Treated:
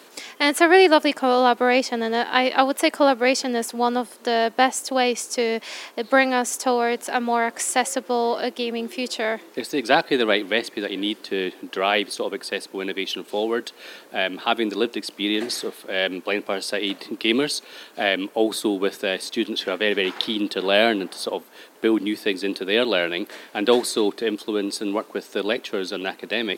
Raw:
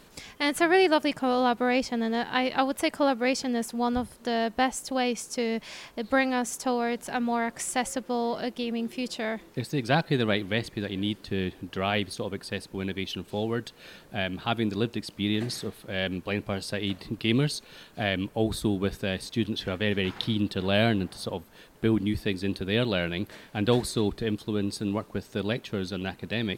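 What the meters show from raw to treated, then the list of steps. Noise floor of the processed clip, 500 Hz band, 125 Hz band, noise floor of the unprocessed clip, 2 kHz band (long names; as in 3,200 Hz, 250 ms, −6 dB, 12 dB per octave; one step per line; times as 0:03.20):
−48 dBFS, +7.5 dB, −12.0 dB, −54 dBFS, +7.5 dB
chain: high-pass filter 280 Hz 24 dB per octave
level +7.5 dB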